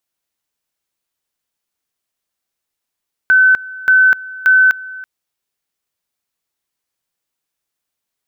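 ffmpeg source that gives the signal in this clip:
ffmpeg -f lavfi -i "aevalsrc='pow(10,(-6-20.5*gte(mod(t,0.58),0.25))/20)*sin(2*PI*1520*t)':duration=1.74:sample_rate=44100" out.wav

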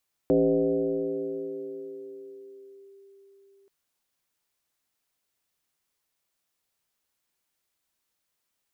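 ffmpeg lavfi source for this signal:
ffmpeg -f lavfi -i "aevalsrc='0.141*pow(10,-3*t/4.97)*sin(2*PI*394*t+1.5*clip(1-t/2.67,0,1)*sin(2*PI*0.29*394*t))':duration=3.38:sample_rate=44100" out.wav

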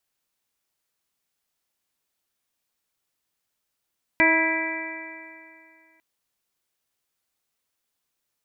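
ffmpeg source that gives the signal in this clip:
ffmpeg -f lavfi -i "aevalsrc='0.0794*pow(10,-3*t/2.39)*sin(2*PI*321.26*t)+0.0596*pow(10,-3*t/2.39)*sin(2*PI*644.05*t)+0.0668*pow(10,-3*t/2.39)*sin(2*PI*969.91*t)+0.01*pow(10,-3*t/2.39)*sin(2*PI*1300.33*t)+0.0631*pow(10,-3*t/2.39)*sin(2*PI*1636.79*t)+0.126*pow(10,-3*t/2.39)*sin(2*PI*1980.69*t)+0.106*pow(10,-3*t/2.39)*sin(2*PI*2333.42*t)':duration=1.8:sample_rate=44100" out.wav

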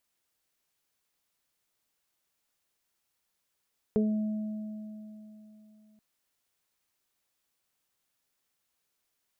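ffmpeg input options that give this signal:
ffmpeg -f lavfi -i "aevalsrc='0.0708*pow(10,-3*t/3.36)*sin(2*PI*214*t)+0.0794*pow(10,-3*t/0.29)*sin(2*PI*428*t)+0.00944*pow(10,-3*t/3.55)*sin(2*PI*642*t)':duration=2.03:sample_rate=44100" out.wav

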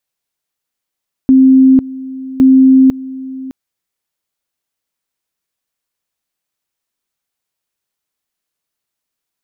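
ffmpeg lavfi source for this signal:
ffmpeg -f lavfi -i "aevalsrc='pow(10,(-3-19*gte(mod(t,1.11),0.5))/20)*sin(2*PI*263*t)':duration=2.22:sample_rate=44100" out.wav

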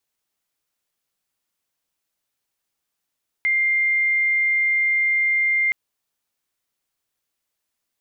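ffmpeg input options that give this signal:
ffmpeg -f lavfi -i "aevalsrc='0.15*sin(2*PI*2100*t)':duration=2.27:sample_rate=44100" out.wav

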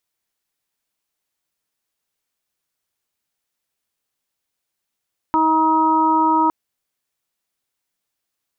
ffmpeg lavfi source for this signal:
ffmpeg -f lavfi -i "aevalsrc='0.112*sin(2*PI*317*t)+0.0251*sin(2*PI*634*t)+0.188*sin(2*PI*951*t)+0.075*sin(2*PI*1268*t)':duration=1.16:sample_rate=44100" out.wav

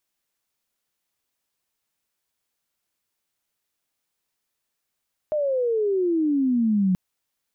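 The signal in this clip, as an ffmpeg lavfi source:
ffmpeg -f lavfi -i "aevalsrc='pow(10,(-20.5+3.5*t/1.63)/20)*sin(2*PI*620*1.63/log(180/620)*(exp(log(180/620)*t/1.63)-1))':duration=1.63:sample_rate=44100" out.wav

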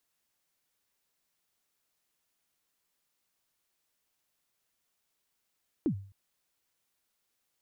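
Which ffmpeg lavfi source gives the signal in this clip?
ffmpeg -f lavfi -i "aevalsrc='0.0794*pow(10,-3*t/0.46)*sin(2*PI*(360*0.087/log(98/360)*(exp(log(98/360)*min(t,0.087)/0.087)-1)+98*max(t-0.087,0)))':duration=0.26:sample_rate=44100" out.wav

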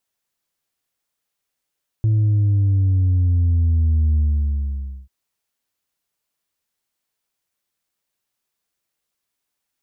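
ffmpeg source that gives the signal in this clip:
ffmpeg -f lavfi -i "aevalsrc='0.2*clip((3.04-t)/0.91,0,1)*tanh(1.26*sin(2*PI*110*3.04/log(65/110)*(exp(log(65/110)*t/3.04)-1)))/tanh(1.26)':duration=3.04:sample_rate=44100" out.wav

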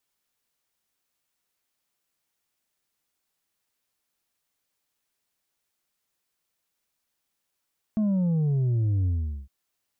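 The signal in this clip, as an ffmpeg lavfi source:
ffmpeg -f lavfi -i "aevalsrc='0.0841*clip((1.51-t)/0.42,0,1)*tanh(1.58*sin(2*PI*220*1.51/log(65/220)*(exp(log(65/220)*t/1.51)-1)))/tanh(1.58)':duration=1.51:sample_rate=44100" out.wav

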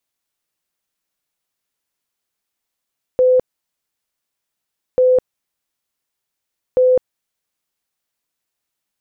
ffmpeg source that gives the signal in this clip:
ffmpeg -f lavfi -i "aevalsrc='0.355*sin(2*PI*508*mod(t,1.79))*lt(mod(t,1.79),105/508)':duration=5.37:sample_rate=44100" out.wav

